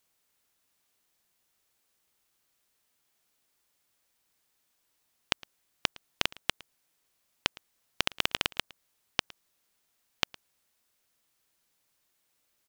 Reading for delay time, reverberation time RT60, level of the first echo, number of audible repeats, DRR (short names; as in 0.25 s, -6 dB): 0.111 s, none, -22.5 dB, 1, none